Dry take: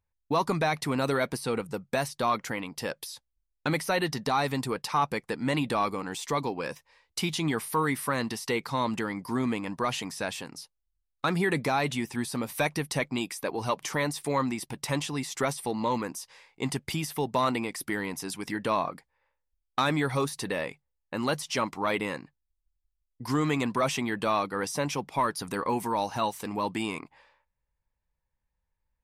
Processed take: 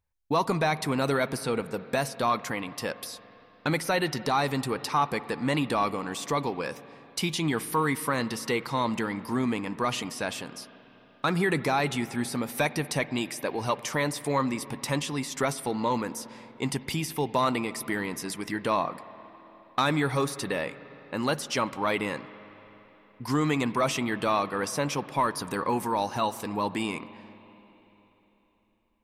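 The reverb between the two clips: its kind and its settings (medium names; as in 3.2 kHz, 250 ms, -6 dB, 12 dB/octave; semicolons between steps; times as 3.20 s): spring tank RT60 3.8 s, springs 49/58 ms, chirp 50 ms, DRR 15 dB; trim +1 dB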